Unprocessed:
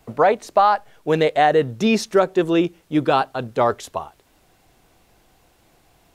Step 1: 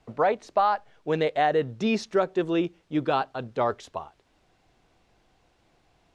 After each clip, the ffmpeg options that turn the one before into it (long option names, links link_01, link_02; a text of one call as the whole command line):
ffmpeg -i in.wav -af "lowpass=5700,volume=-7dB" out.wav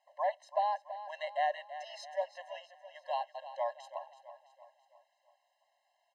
ffmpeg -i in.wav -af "aecho=1:1:331|662|993|1324|1655:0.224|0.11|0.0538|0.0263|0.0129,afftfilt=real='re*eq(mod(floor(b*sr/1024/540),2),1)':imag='im*eq(mod(floor(b*sr/1024/540),2),1)':win_size=1024:overlap=0.75,volume=-8dB" out.wav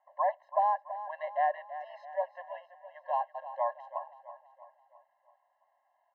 ffmpeg -i in.wav -af "lowpass=frequency=1300:width_type=q:width=5.6" out.wav